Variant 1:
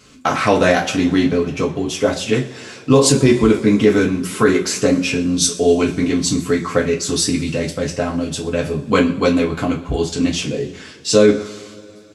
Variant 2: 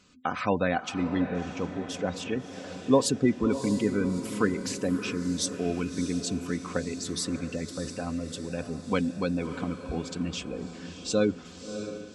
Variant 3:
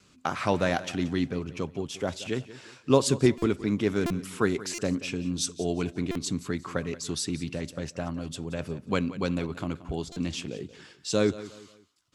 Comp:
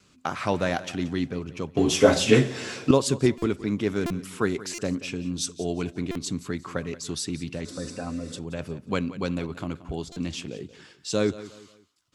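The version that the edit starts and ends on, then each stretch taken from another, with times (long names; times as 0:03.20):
3
0:01.77–0:02.91: punch in from 1
0:07.65–0:08.39: punch in from 2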